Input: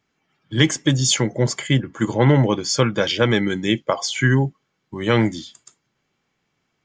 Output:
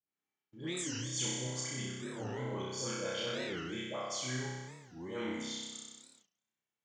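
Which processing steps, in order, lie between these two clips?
reverse; compressor 5:1, threshold -32 dBFS, peak gain reduction 19.5 dB; reverse; HPF 80 Hz; high shelf 7500 Hz +9 dB; notch 5000 Hz, Q 7.1; dispersion highs, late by 83 ms, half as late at 910 Hz; on a send: flutter echo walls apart 5.4 m, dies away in 1.4 s; on the sum: gate -54 dBFS, range -19 dB; low shelf 150 Hz -11.5 dB; record warp 45 rpm, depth 250 cents; gain -8.5 dB

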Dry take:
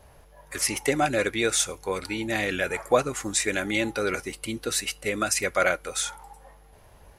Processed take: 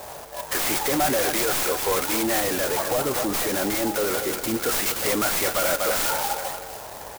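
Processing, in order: tracing distortion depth 0.15 ms; feedback echo 0.24 s, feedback 45%, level -17.5 dB; overdrive pedal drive 31 dB, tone 5900 Hz, clips at -7 dBFS; 2.4–4.55 bell 2200 Hz -6 dB 2.5 oct; limiter -14.5 dBFS, peak gain reduction 6.5 dB; bell 720 Hz +3.5 dB 0.77 oct; clock jitter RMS 0.1 ms; gain -4.5 dB

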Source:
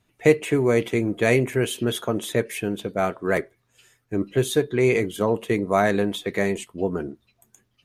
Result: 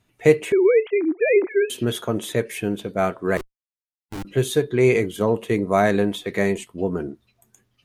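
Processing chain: 0.52–1.7 sine-wave speech; 3.37–4.25 Schmitt trigger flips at -27 dBFS; harmonic-percussive split harmonic +4 dB; gain -1 dB

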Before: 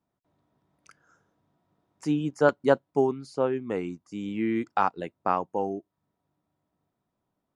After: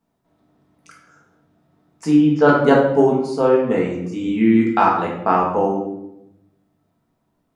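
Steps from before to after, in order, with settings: 2.1–2.62 LPF 3300 Hz -> 6800 Hz 24 dB/oct; reverb RT60 0.85 s, pre-delay 4 ms, DRR -3 dB; gain +5.5 dB

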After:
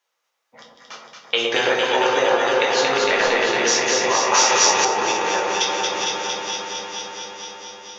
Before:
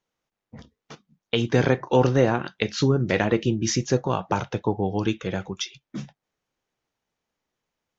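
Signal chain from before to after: regenerating reverse delay 0.233 s, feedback 76%, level -8 dB; HPF 820 Hz 12 dB/oct; echo with dull and thin repeats by turns 0.114 s, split 1100 Hz, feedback 88%, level -3 dB; 3–3.43 added noise brown -65 dBFS; shoebox room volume 61 m³, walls mixed, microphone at 0.77 m; compressor 2.5:1, threshold -22 dBFS, peak gain reduction 5.5 dB; 4.34–4.85 high shelf 2400 Hz +10.5 dB; gain +6.5 dB

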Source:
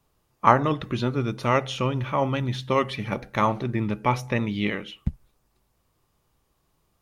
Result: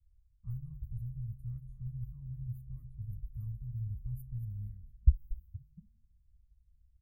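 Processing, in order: inverse Chebyshev band-stop 310–5800 Hz, stop band 70 dB; low-pass opened by the level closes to 2000 Hz, open at -44.5 dBFS; frequency-shifting echo 0.231 s, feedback 31%, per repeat -76 Hz, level -12.5 dB; gain +9 dB

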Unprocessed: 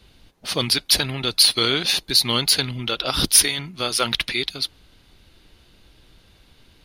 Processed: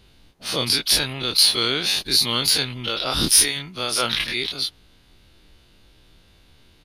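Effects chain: spectral dilation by 60 ms; downsampling 32000 Hz; gain -5 dB

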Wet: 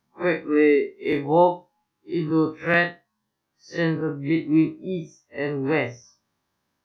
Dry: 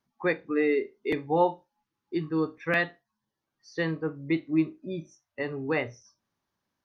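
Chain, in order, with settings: time blur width 84 ms; gain +8 dB

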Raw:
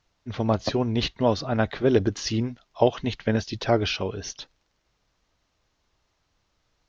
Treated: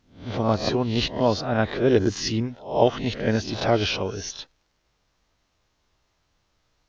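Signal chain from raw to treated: spectral swells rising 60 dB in 0.42 s

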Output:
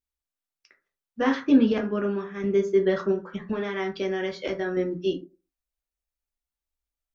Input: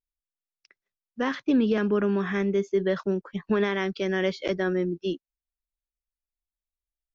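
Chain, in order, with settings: 1.78–2.44 expander -18 dBFS; 3.11–4.77 compressor, threshold -27 dBFS, peak gain reduction 8 dB; reverb RT60 0.30 s, pre-delay 3 ms, DRR 1 dB

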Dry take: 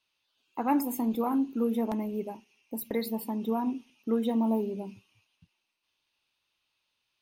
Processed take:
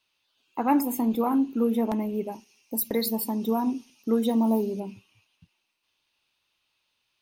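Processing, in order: 2.32–4.8 resonant high shelf 3800 Hz +7 dB, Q 1.5; gain +4 dB

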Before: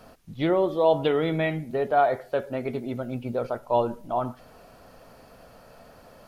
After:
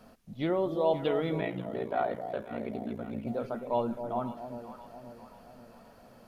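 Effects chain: echo with dull and thin repeats by turns 0.265 s, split 800 Hz, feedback 69%, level -8 dB; 1.4–3.27 ring modulator 29 Hz; bell 220 Hz +9.5 dB 0.32 oct; gain -7 dB

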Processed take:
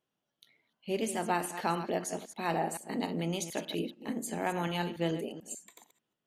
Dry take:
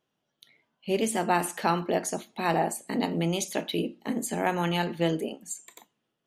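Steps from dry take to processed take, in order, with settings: reverse delay 0.146 s, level -11 dB; gain -6 dB

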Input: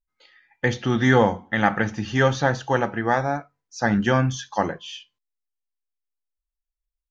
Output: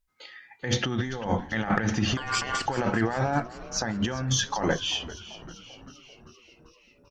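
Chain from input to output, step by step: negative-ratio compressor -29 dBFS, ratio -1; added harmonics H 2 -29 dB, 4 -24 dB, 6 -34 dB, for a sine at -10.5 dBFS; 2.17–2.66 ring modulator 1300 Hz; frequency-shifting echo 0.391 s, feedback 64%, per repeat -100 Hz, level -16 dB; gain +1.5 dB

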